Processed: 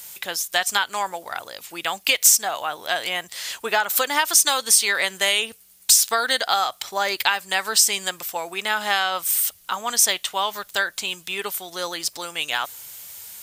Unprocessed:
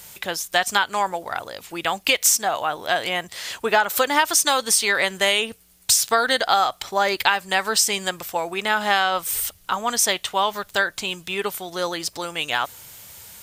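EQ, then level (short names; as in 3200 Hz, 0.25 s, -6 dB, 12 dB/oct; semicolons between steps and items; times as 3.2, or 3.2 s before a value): tilt +2 dB/oct; -3.0 dB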